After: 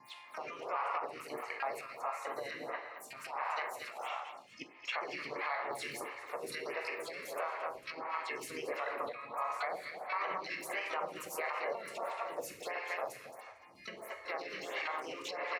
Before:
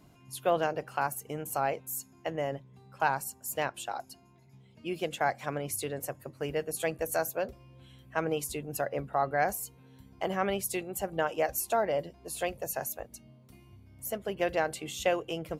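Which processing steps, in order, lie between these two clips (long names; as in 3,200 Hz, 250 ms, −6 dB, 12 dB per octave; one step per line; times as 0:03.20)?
slices reordered back to front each 125 ms, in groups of 3
pair of resonant band-passes 1,600 Hz, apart 0.82 octaves
convolution reverb RT60 0.90 s, pre-delay 7 ms, DRR 5 dB
pitch-shifted copies added −4 semitones −9 dB, −3 semitones −6 dB, +12 semitones −13 dB
repeating echo 225 ms, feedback 28%, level −11 dB
downward compressor 2.5 to 1, threshold −47 dBFS, peak gain reduction 10.5 dB
brickwall limiter −41.5 dBFS, peak gain reduction 11 dB
phaser with staggered stages 1.5 Hz
level +16.5 dB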